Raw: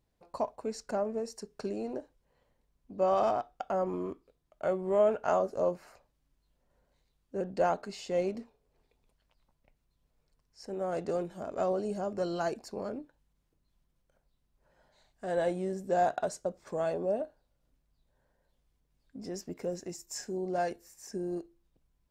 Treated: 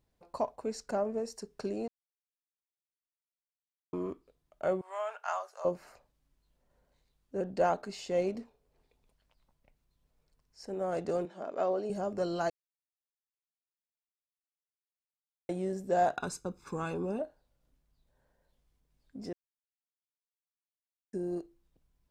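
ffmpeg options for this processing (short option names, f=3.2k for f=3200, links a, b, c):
-filter_complex "[0:a]asettb=1/sr,asplit=3[a][b][c];[a]atrim=end=4.814[d];[b]atrim=start=4.81:end=5.65,asetpts=PTS-STARTPTS,afade=t=in:d=0.004:c=qsin,afade=t=out:st=0.836:d=0.004:c=qsin,highpass=f=890:w=0.5412,highpass=f=890:w=1.3066[e];[c]atrim=start=5.646[f];[d][e]acrossfade=d=0.004:c1=hsin:c2=qsin[g];[g][f]acrossfade=d=0.004:c1=qsin:c2=hsin,asettb=1/sr,asplit=3[h][i][j];[h]atrim=end=11.254[k];[i]atrim=start=11.25:end=11.9,asetpts=PTS-STARTPTS,afade=t=in:d=0.004:c=qsin,afade=t=out:st=0.646:d=0.004:c=qsin,highpass=270,lowpass=4.9k[l];[j]atrim=start=11.896[m];[k][l]acrossfade=d=0.004:c1=hsin:c2=qsin[n];[n][m]acrossfade=d=0.004:c1=qsin:c2=hsin,asettb=1/sr,asplit=3[o][p][q];[o]atrim=end=16.174[r];[p]atrim=start=16.17:end=17.19,asetpts=PTS-STARTPTS,afade=t=in:d=0.004:c=qsin,afade=t=out:st=1.016:d=0.004:c=qsin,aecho=1:1:0.8:0.88,atrim=end_sample=44982[s];[q]atrim=start=17.186[t];[r][s]acrossfade=d=0.004:c1=hsin:c2=qsin[u];[u][t]acrossfade=d=0.004:c1=qsin:c2=hsin,asplit=7[v][w][x][y][z][aa][ab];[v]atrim=end=1.88,asetpts=PTS-STARTPTS,afade=t=out:st=1.876:d=0.004:c=hsin[ac];[w]atrim=start=1.88:end=3.93,asetpts=PTS-STARTPTS,volume=0[ad];[x]atrim=start=3.93:end=12.5,asetpts=PTS-STARTPTS,afade=t=in:d=0.004:c=hsin,afade=t=out:st=8.566:d=0.004:c=hsin[ae];[y]atrim=start=12.5:end=15.49,asetpts=PTS-STARTPTS,volume=0[af];[z]atrim=start=15.49:end=19.33,asetpts=PTS-STARTPTS,afade=t=in:d=0.004:c=hsin,afade=t=out:st=3.836:d=0.004:c=hsin[ag];[aa]atrim=start=19.33:end=21.13,asetpts=PTS-STARTPTS,volume=0[ah];[ab]atrim=start=21.13,asetpts=PTS-STARTPTS,afade=t=in:d=0.004:c=hsin[ai];[ac][ad][ae][af][ag][ah][ai]concat=n=7:v=0:a=1"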